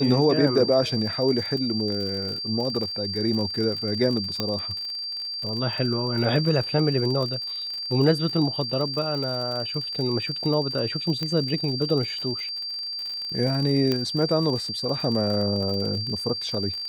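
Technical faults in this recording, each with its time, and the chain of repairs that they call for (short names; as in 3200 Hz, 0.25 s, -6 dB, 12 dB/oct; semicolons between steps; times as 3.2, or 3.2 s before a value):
crackle 47/s -30 dBFS
tone 4700 Hz -29 dBFS
4.4 pop -11 dBFS
11.23 pop -15 dBFS
13.92 pop -11 dBFS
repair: de-click; notch 4700 Hz, Q 30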